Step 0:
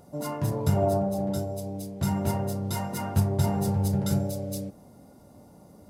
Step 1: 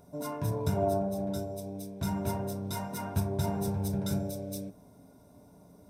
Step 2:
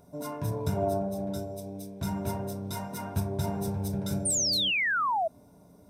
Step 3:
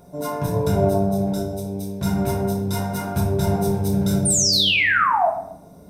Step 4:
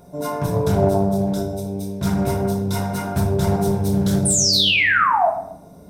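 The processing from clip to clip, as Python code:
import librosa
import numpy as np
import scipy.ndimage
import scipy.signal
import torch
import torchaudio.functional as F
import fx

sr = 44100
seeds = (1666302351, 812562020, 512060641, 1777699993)

y1 = fx.ripple_eq(x, sr, per_octave=1.6, db=8)
y1 = F.gain(torch.from_numpy(y1), -5.0).numpy()
y2 = fx.spec_paint(y1, sr, seeds[0], shape='fall', start_s=4.25, length_s=1.03, low_hz=620.0, high_hz=9400.0, level_db=-27.0)
y3 = fx.room_shoebox(y2, sr, seeds[1], volume_m3=170.0, walls='mixed', distance_m=0.91)
y3 = F.gain(torch.from_numpy(y3), 6.5).numpy()
y4 = fx.doppler_dist(y3, sr, depth_ms=0.21)
y4 = F.gain(torch.from_numpy(y4), 1.5).numpy()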